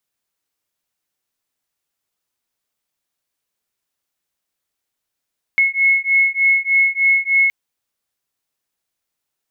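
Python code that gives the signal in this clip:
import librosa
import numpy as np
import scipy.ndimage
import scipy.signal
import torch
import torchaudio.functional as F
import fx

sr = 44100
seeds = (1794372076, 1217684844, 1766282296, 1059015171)

y = fx.two_tone_beats(sr, length_s=1.92, hz=2180.0, beat_hz=3.3, level_db=-15.5)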